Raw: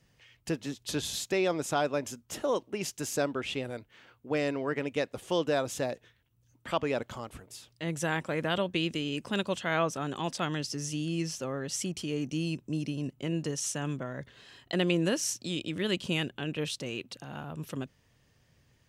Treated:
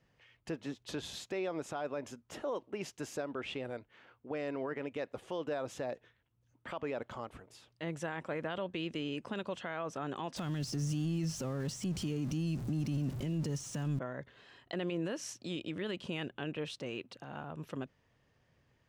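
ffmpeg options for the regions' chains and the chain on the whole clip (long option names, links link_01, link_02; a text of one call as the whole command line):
ffmpeg -i in.wav -filter_complex "[0:a]asettb=1/sr,asplit=3[link_01][link_02][link_03];[link_01]atrim=end=10.364[link_04];[link_02]atrim=start=10.36:end=13.99,asetpts=PTS-STARTPTS,afade=type=in:duration=0.004:curve=qsin,afade=type=out:start_time=3.626:duration=0.004:curve=qsin,aeval=exprs='val(0)+0.5*0.00944*sgn(val(0))':channel_layout=same,deesser=0.85,bass=frequency=250:gain=15,treble=frequency=4000:gain=13[link_05];[link_03]atrim=start=13.986[link_06];[link_04][link_05]acrossfade=duration=0.004:curve1=hsin:curve2=qsin[link_07];[link_07][link_06]acrossfade=duration=0.004:curve1=qsin:curve2=hsin,lowpass=frequency=1300:poles=1,lowshelf=frequency=350:gain=-8.5,alimiter=level_in=5.5dB:limit=-24dB:level=0:latency=1:release=71,volume=-5.5dB,volume=1.5dB" out.wav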